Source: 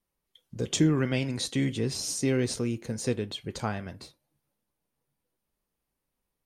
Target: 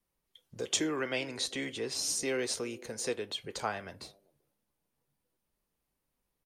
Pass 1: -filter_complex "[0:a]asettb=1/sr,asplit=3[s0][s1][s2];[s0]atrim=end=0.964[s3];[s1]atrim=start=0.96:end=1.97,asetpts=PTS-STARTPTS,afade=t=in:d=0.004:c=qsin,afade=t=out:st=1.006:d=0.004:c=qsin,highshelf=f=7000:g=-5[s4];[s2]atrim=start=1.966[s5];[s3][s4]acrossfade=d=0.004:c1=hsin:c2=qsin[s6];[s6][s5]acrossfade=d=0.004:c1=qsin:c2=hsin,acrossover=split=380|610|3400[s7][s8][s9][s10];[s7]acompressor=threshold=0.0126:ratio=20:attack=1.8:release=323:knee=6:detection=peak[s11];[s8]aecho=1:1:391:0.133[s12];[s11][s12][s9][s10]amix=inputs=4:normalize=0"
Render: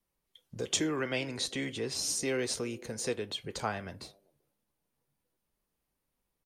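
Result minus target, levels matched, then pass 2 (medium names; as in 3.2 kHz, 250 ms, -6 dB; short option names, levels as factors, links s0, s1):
compression: peak gain reduction -7 dB
-filter_complex "[0:a]asettb=1/sr,asplit=3[s0][s1][s2];[s0]atrim=end=0.964[s3];[s1]atrim=start=0.96:end=1.97,asetpts=PTS-STARTPTS,afade=t=in:d=0.004:c=qsin,afade=t=out:st=1.006:d=0.004:c=qsin,highshelf=f=7000:g=-5[s4];[s2]atrim=start=1.966[s5];[s3][s4]acrossfade=d=0.004:c1=hsin:c2=qsin[s6];[s6][s5]acrossfade=d=0.004:c1=qsin:c2=hsin,acrossover=split=380|610|3400[s7][s8][s9][s10];[s7]acompressor=threshold=0.00531:ratio=20:attack=1.8:release=323:knee=6:detection=peak[s11];[s8]aecho=1:1:391:0.133[s12];[s11][s12][s9][s10]amix=inputs=4:normalize=0"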